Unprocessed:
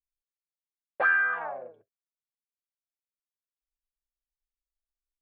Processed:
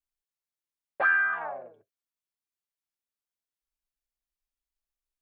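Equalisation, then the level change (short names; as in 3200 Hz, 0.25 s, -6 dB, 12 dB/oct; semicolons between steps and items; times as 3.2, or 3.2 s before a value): notch 500 Hz; 0.0 dB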